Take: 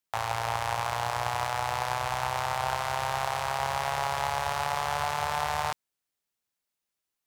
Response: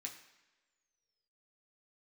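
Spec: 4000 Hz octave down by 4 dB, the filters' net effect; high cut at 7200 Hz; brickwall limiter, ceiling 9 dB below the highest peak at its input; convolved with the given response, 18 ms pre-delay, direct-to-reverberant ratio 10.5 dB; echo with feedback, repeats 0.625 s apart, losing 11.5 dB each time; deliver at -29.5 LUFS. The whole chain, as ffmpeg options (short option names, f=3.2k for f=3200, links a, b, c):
-filter_complex "[0:a]lowpass=7.2k,equalizer=f=4k:t=o:g=-5,alimiter=limit=-23dB:level=0:latency=1,aecho=1:1:625|1250|1875:0.266|0.0718|0.0194,asplit=2[a][b];[1:a]atrim=start_sample=2205,adelay=18[c];[b][c]afir=irnorm=-1:irlink=0,volume=-7dB[d];[a][d]amix=inputs=2:normalize=0,volume=5.5dB"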